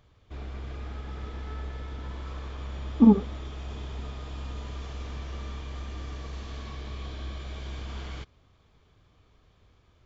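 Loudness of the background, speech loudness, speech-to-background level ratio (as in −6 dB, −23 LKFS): −39.0 LKFS, −21.0 LKFS, 18.0 dB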